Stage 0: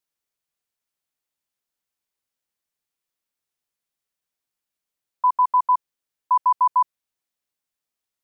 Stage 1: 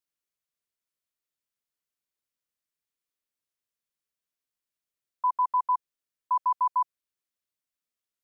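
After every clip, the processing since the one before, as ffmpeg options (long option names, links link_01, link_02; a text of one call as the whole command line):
ffmpeg -i in.wav -af "equalizer=frequency=820:width_type=o:width=0.24:gain=-9,volume=-5.5dB" out.wav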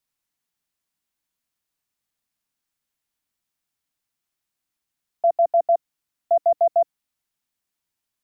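ffmpeg -i in.wav -af "afreqshift=-320,volume=7dB" out.wav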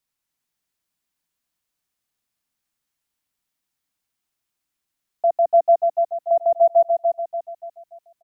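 ffmpeg -i in.wav -af "aecho=1:1:290|580|870|1160|1450:0.631|0.259|0.106|0.0435|0.0178" out.wav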